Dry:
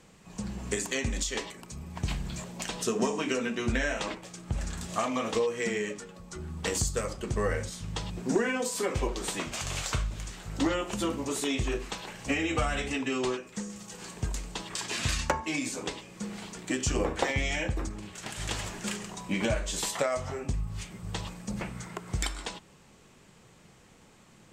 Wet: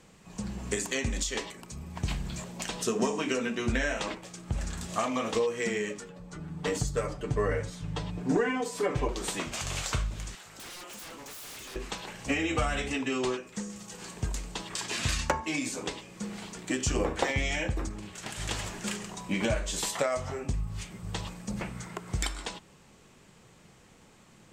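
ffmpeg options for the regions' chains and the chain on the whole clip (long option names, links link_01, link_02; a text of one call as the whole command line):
ffmpeg -i in.wav -filter_complex "[0:a]asettb=1/sr,asplit=3[link_01][link_02][link_03];[link_01]atrim=end=6.094[link_04];[link_02]atrim=start=6.09:end=9.09,asetpts=PTS-STARTPTS,afade=type=in:duration=0.004:curve=qsin,afade=type=out:start_time=2.996:duration=0.004:curve=qsin,highshelf=frequency=3400:gain=-11,aecho=1:1:6.8:0.78,atrim=end_sample=132300[link_05];[link_03]atrim=start=9.086[link_06];[link_04][link_05]acrossfade=duration=0.004:curve1=hsin:curve2=qsin[link_07];[link_07][link_06]acrossfade=duration=0.004:curve1=qsin:curve2=hsin,asettb=1/sr,asplit=3[link_08][link_09][link_10];[link_08]atrim=end=10.354[link_11];[link_09]atrim=start=10.35:end=11.76,asetpts=PTS-STARTPTS,afade=type=in:duration=0.004:curve=qsin,afade=type=out:start_time=1.406:duration=0.004:curve=qsin,highpass=frequency=1000:poles=1,aeval=exprs='0.0112*(abs(mod(val(0)/0.0112+3,4)-2)-1)':channel_layout=same[link_12];[link_10]atrim=start=11.756[link_13];[link_11][link_12]acrossfade=duration=0.004:curve1=hsin:curve2=qsin[link_14];[link_14][link_13]acrossfade=duration=0.004:curve1=qsin:curve2=hsin" out.wav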